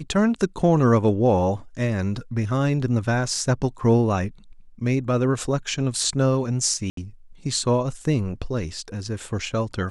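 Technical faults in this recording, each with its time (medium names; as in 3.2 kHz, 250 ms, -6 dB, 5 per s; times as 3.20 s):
6.90–6.97 s: dropout 73 ms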